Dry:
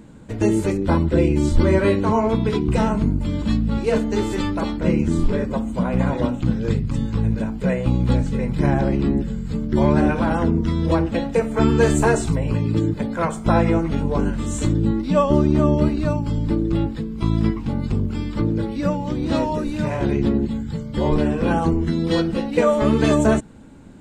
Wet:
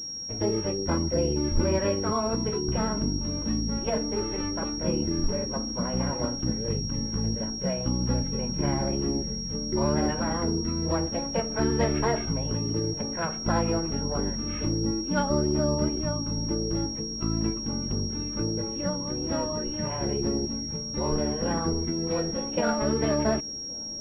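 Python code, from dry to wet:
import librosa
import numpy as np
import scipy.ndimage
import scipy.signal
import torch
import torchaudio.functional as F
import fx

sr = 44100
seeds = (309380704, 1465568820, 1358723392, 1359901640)

y = fx.formant_shift(x, sr, semitones=3)
y = fx.echo_wet_lowpass(y, sr, ms=1122, feedback_pct=73, hz=540.0, wet_db=-22)
y = fx.pwm(y, sr, carrier_hz=5600.0)
y = F.gain(torch.from_numpy(y), -8.5).numpy()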